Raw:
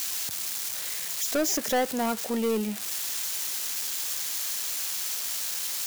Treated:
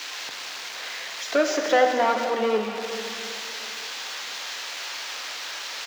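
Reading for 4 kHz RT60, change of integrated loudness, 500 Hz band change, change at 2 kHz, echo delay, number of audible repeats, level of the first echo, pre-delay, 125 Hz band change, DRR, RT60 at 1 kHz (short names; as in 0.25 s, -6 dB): 2.3 s, +1.0 dB, +7.0 dB, +8.5 dB, 0.433 s, 1, -15.5 dB, 3 ms, n/a, 2.5 dB, 2.5 s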